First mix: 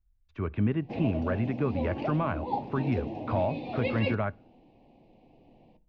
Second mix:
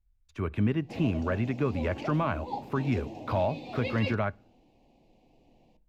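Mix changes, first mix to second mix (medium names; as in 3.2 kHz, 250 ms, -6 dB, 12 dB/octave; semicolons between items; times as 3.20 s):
background -5.5 dB; master: remove distance through air 260 m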